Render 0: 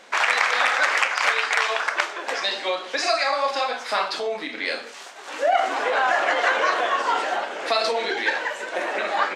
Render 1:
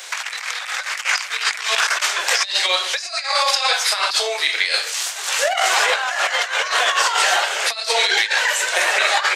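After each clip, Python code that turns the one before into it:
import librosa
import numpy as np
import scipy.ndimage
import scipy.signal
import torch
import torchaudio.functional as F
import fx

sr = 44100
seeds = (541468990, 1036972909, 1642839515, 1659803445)

y = scipy.signal.sosfilt(scipy.signal.butter(12, 350.0, 'highpass', fs=sr, output='sos'), x)
y = fx.tilt_eq(y, sr, slope=5.5)
y = fx.over_compress(y, sr, threshold_db=-22.0, ratio=-0.5)
y = y * 10.0 ** (3.0 / 20.0)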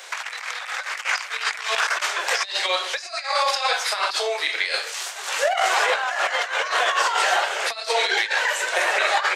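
y = fx.high_shelf(x, sr, hz=2200.0, db=-8.5)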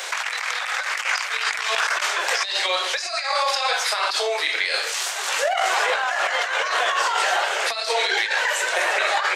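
y = fx.env_flatten(x, sr, amount_pct=50)
y = y * 10.0 ** (-2.0 / 20.0)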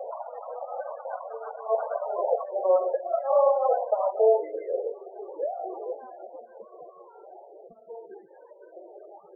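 y = fx.rev_fdn(x, sr, rt60_s=3.3, lf_ratio=1.0, hf_ratio=0.9, size_ms=26.0, drr_db=15.5)
y = fx.filter_sweep_lowpass(y, sr, from_hz=600.0, to_hz=190.0, start_s=4.03, end_s=7.05, q=2.8)
y = fx.spec_topn(y, sr, count=16)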